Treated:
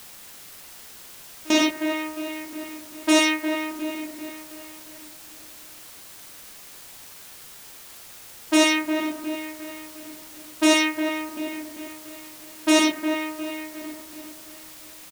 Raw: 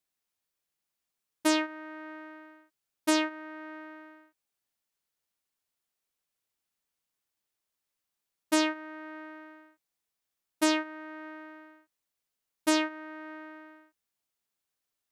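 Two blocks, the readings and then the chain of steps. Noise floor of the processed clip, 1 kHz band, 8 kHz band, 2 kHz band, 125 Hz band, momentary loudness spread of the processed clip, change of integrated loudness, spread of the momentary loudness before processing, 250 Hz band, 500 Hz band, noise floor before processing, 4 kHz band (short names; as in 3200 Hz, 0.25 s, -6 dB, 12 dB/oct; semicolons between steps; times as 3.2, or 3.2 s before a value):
-44 dBFS, +6.5 dB, +10.0 dB, +10.0 dB, n/a, 22 LU, +7.0 dB, 20 LU, +9.0 dB, +9.0 dB, under -85 dBFS, +10.5 dB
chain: low-pass opened by the level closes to 1400 Hz, open at -23 dBFS; notches 50/100/150/200/250 Hz; comb 6.1 ms, depth 40%; dark delay 0.357 s, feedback 52%, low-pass 2500 Hz, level -8 dB; step gate "xx.x.xxxxxxxxxx." 190 bpm -24 dB; non-linear reverb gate 0.14 s flat, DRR -4 dB; requantised 8-bit, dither triangular; gain +4 dB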